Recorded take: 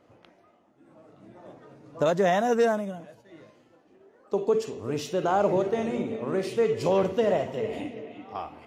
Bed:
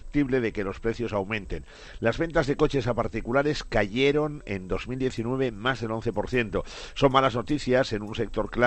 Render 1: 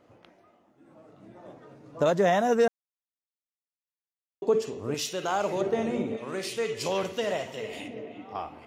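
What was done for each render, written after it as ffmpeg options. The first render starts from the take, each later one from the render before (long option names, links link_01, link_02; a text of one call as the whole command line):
ffmpeg -i in.wav -filter_complex "[0:a]asettb=1/sr,asplit=3[link_01][link_02][link_03];[link_01]atrim=end=4.944[link_04];[link_02]atrim=start=4.94:end=5.61,asetpts=PTS-STARTPTS,afade=type=in:duration=0.004:curve=qsin,afade=type=out:start_time=0.666:duration=0.004:curve=qsin,tiltshelf=frequency=1400:gain=-8[link_05];[link_03]atrim=start=5.606[link_06];[link_04][link_05]acrossfade=duration=0.004:curve1=hsin:curve2=qsin[link_07];[link_07][link_06]acrossfade=duration=0.004:curve1=qsin:curve2=hsin,asettb=1/sr,asplit=3[link_08][link_09][link_10];[link_08]atrim=end=6.174[link_11];[link_09]atrim=start=6.17:end=7.88,asetpts=PTS-STARTPTS,afade=type=in:duration=0.004:curve=qsin,afade=type=out:start_time=1.706:duration=0.004:curve=qsin,tiltshelf=frequency=1500:gain=-8[link_12];[link_10]atrim=start=7.876[link_13];[link_11][link_12]acrossfade=duration=0.004:curve1=hsin:curve2=qsin[link_14];[link_14][link_13]acrossfade=duration=0.004:curve1=qsin:curve2=hsin,asplit=3[link_15][link_16][link_17];[link_15]atrim=end=2.68,asetpts=PTS-STARTPTS,afade=type=out:start_time=2.676:duration=0.004:curve=hsin[link_18];[link_16]atrim=start=2.68:end=4.42,asetpts=PTS-STARTPTS,volume=0[link_19];[link_17]atrim=start=4.42,asetpts=PTS-STARTPTS,afade=type=in:duration=0.004:curve=hsin[link_20];[link_18][link_19][link_20]concat=n=3:v=0:a=1" out.wav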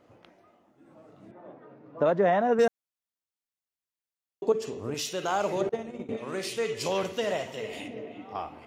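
ffmpeg -i in.wav -filter_complex "[0:a]asettb=1/sr,asplit=3[link_01][link_02][link_03];[link_01]atrim=end=1.314[link_04];[link_02]atrim=start=1.31:end=2.59,asetpts=PTS-STARTPTS,afade=type=in:duration=0.004:curve=qsin,afade=type=out:start_time=1.276:duration=0.004:curve=qsin,highpass=160,lowpass=2100[link_05];[link_03]atrim=start=2.586[link_06];[link_04][link_05]acrossfade=duration=0.004:curve1=hsin:curve2=qsin[link_07];[link_07][link_06]acrossfade=duration=0.004:curve1=qsin:curve2=hsin,asettb=1/sr,asplit=3[link_08][link_09][link_10];[link_08]atrim=end=4.524[link_11];[link_09]atrim=start=4.52:end=5.08,asetpts=PTS-STARTPTS,afade=type=in:duration=0.004:curve=qsin,afade=type=out:start_time=0.556:duration=0.004:curve=qsin,acompressor=threshold=-27dB:ratio=6:attack=3.2:release=140:knee=1:detection=peak[link_12];[link_10]atrim=start=5.076[link_13];[link_11][link_12]acrossfade=duration=0.004:curve1=hsin:curve2=qsin[link_14];[link_14][link_13]acrossfade=duration=0.004:curve1=qsin:curve2=hsin,asettb=1/sr,asplit=3[link_15][link_16][link_17];[link_15]atrim=end=5.694[link_18];[link_16]atrim=start=5.69:end=6.09,asetpts=PTS-STARTPTS,afade=type=in:duration=0.004:curve=qsin,afade=type=out:start_time=0.396:duration=0.004:curve=qsin,agate=range=-33dB:threshold=-21dB:ratio=3:release=100:detection=peak[link_19];[link_17]atrim=start=6.086[link_20];[link_18][link_19]acrossfade=duration=0.004:curve1=hsin:curve2=qsin[link_21];[link_21][link_20]acrossfade=duration=0.004:curve1=qsin:curve2=hsin" out.wav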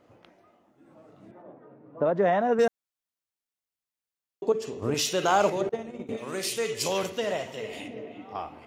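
ffmpeg -i in.wav -filter_complex "[0:a]asettb=1/sr,asplit=3[link_01][link_02][link_03];[link_01]atrim=end=1.424[link_04];[link_02]atrim=start=1.42:end=2.16,asetpts=PTS-STARTPTS,afade=type=in:duration=0.004:curve=qsin,afade=type=out:start_time=0.736:duration=0.004:curve=qsin,lowpass=frequency=1200:poles=1[link_05];[link_03]atrim=start=2.156[link_06];[link_04][link_05]acrossfade=duration=0.004:curve1=hsin:curve2=qsin[link_07];[link_07][link_06]acrossfade=duration=0.004:curve1=qsin:curve2=hsin,asettb=1/sr,asplit=3[link_08][link_09][link_10];[link_08]atrim=end=4.824[link_11];[link_09]atrim=start=4.82:end=5.5,asetpts=PTS-STARTPTS,afade=type=in:duration=0.004:curve=qsin,afade=type=out:start_time=0.676:duration=0.004:curve=qsin,acontrast=47[link_12];[link_10]atrim=start=5.496[link_13];[link_11][link_12]acrossfade=duration=0.004:curve1=hsin:curve2=qsin[link_14];[link_14][link_13]acrossfade=duration=0.004:curve1=qsin:curve2=hsin,asettb=1/sr,asplit=3[link_15][link_16][link_17];[link_15]atrim=end=6.074[link_18];[link_16]atrim=start=6.07:end=7.1,asetpts=PTS-STARTPTS,afade=type=in:duration=0.004:curve=qsin,afade=type=out:start_time=1.026:duration=0.004:curve=qsin,highshelf=frequency=5600:gain=11.5[link_19];[link_17]atrim=start=7.096[link_20];[link_18][link_19]acrossfade=duration=0.004:curve1=hsin:curve2=qsin[link_21];[link_21][link_20]acrossfade=duration=0.004:curve1=qsin:curve2=hsin" out.wav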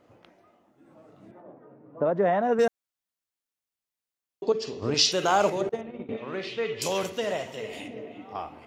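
ffmpeg -i in.wav -filter_complex "[0:a]asettb=1/sr,asplit=3[link_01][link_02][link_03];[link_01]atrim=end=1.404[link_04];[link_02]atrim=start=1.4:end=2.43,asetpts=PTS-STARTPTS,afade=type=in:duration=0.004:curve=qsin,afade=type=out:start_time=1.026:duration=0.004:curve=qsin,equalizer=frequency=7800:width=0.41:gain=-7.5[link_05];[link_03]atrim=start=2.426[link_06];[link_04][link_05]acrossfade=duration=0.004:curve1=hsin:curve2=qsin[link_07];[link_07][link_06]acrossfade=duration=0.004:curve1=qsin:curve2=hsin,asettb=1/sr,asplit=3[link_08][link_09][link_10];[link_08]atrim=end=4.434[link_11];[link_09]atrim=start=4.43:end=5.12,asetpts=PTS-STARTPTS,afade=type=in:duration=0.004:curve=qsin,afade=type=out:start_time=0.686:duration=0.004:curve=qsin,lowpass=frequency=4800:width_type=q:width=3.7[link_12];[link_10]atrim=start=5.116[link_13];[link_11][link_12]acrossfade=duration=0.004:curve1=hsin:curve2=qsin[link_14];[link_14][link_13]acrossfade=duration=0.004:curve1=qsin:curve2=hsin,asettb=1/sr,asplit=3[link_15][link_16][link_17];[link_15]atrim=end=5.814[link_18];[link_16]atrim=start=5.81:end=6.82,asetpts=PTS-STARTPTS,afade=type=in:duration=0.004:curve=qsin,afade=type=out:start_time=1.006:duration=0.004:curve=qsin,lowpass=frequency=3600:width=0.5412,lowpass=frequency=3600:width=1.3066[link_19];[link_17]atrim=start=6.816[link_20];[link_18][link_19]acrossfade=duration=0.004:curve1=hsin:curve2=qsin[link_21];[link_21][link_20]acrossfade=duration=0.004:curve1=qsin:curve2=hsin" out.wav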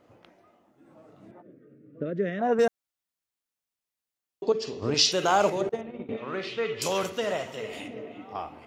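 ffmpeg -i in.wav -filter_complex "[0:a]asplit=3[link_01][link_02][link_03];[link_01]afade=type=out:start_time=1.41:duration=0.02[link_04];[link_02]asuperstop=centerf=870:order=4:qfactor=0.64,afade=type=in:start_time=1.41:duration=0.02,afade=type=out:start_time=2.39:duration=0.02[link_05];[link_03]afade=type=in:start_time=2.39:duration=0.02[link_06];[link_04][link_05][link_06]amix=inputs=3:normalize=0,asettb=1/sr,asplit=3[link_07][link_08][link_09];[link_07]atrim=end=6.174[link_10];[link_08]atrim=start=6.17:end=8.25,asetpts=PTS-STARTPTS,afade=type=in:duration=0.004:curve=qsin,afade=type=out:start_time=2.076:duration=0.004:curve=qsin,equalizer=frequency=1300:width=3.6:gain=6[link_11];[link_09]atrim=start=8.246[link_12];[link_10][link_11]acrossfade=duration=0.004:curve1=hsin:curve2=qsin[link_13];[link_13][link_12]acrossfade=duration=0.004:curve1=qsin:curve2=hsin" out.wav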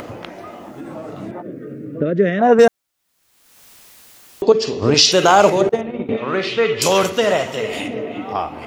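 ffmpeg -i in.wav -af "acompressor=mode=upward:threshold=-33dB:ratio=2.5,alimiter=level_in=12.5dB:limit=-1dB:release=50:level=0:latency=1" out.wav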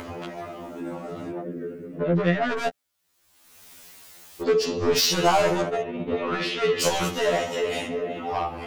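ffmpeg -i in.wav -af "asoftclip=type=tanh:threshold=-15.5dB,afftfilt=real='re*2*eq(mod(b,4),0)':imag='im*2*eq(mod(b,4),0)':win_size=2048:overlap=0.75" out.wav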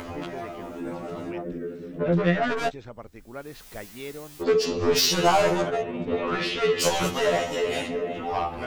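ffmpeg -i in.wav -i bed.wav -filter_complex "[1:a]volume=-15.5dB[link_01];[0:a][link_01]amix=inputs=2:normalize=0" out.wav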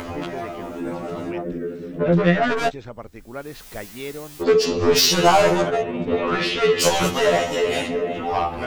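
ffmpeg -i in.wav -af "volume=5dB" out.wav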